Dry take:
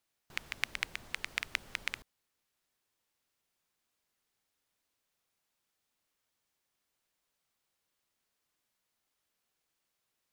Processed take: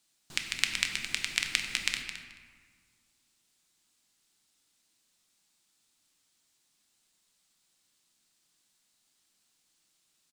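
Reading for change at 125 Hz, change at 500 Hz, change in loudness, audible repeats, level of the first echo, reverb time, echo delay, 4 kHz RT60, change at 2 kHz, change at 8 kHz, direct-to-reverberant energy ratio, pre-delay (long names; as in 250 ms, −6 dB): +5.0 dB, −0.5 dB, +7.5 dB, 2, −11.0 dB, 1.6 s, 216 ms, 0.95 s, +5.5 dB, +13.5 dB, 3.0 dB, 5 ms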